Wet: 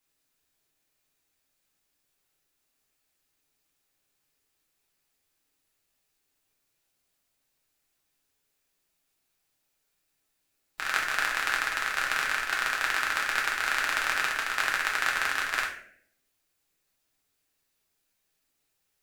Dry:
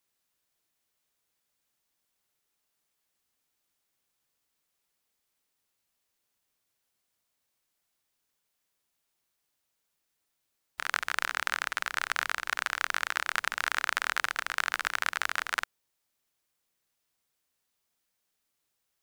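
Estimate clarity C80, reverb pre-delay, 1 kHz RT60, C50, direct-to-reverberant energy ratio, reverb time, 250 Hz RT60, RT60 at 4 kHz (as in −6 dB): 10.0 dB, 5 ms, 0.55 s, 6.0 dB, −3.0 dB, 0.65 s, 0.85 s, 0.40 s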